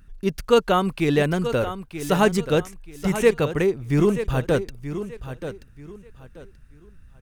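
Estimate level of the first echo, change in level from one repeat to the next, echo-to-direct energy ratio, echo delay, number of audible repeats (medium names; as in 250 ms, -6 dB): -11.0 dB, -11.5 dB, -10.5 dB, 932 ms, 3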